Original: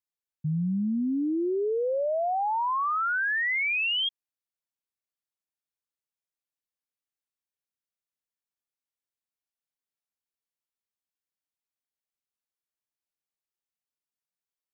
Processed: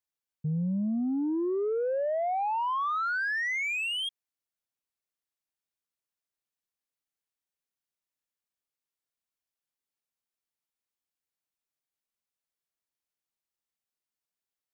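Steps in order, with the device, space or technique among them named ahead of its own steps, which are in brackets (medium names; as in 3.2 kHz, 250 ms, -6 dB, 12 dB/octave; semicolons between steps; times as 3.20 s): saturation between pre-emphasis and de-emphasis (treble shelf 2.9 kHz +12 dB; saturation -23.5 dBFS, distortion -16 dB; treble shelf 2.9 kHz -12 dB)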